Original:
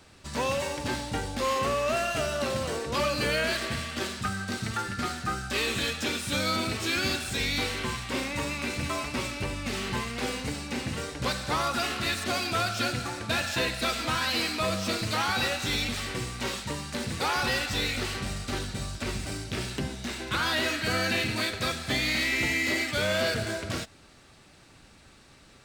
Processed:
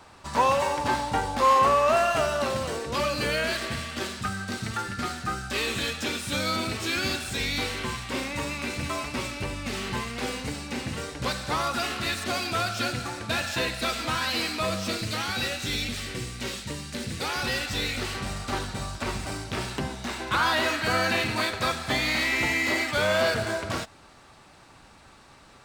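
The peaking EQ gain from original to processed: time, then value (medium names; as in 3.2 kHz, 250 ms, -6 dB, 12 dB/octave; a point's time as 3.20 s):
peaking EQ 950 Hz 1.2 oct
2.13 s +12 dB
2.75 s +1 dB
14.77 s +1 dB
15.17 s -6.5 dB
17.17 s -6.5 dB
18.10 s +2 dB
18.45 s +9 dB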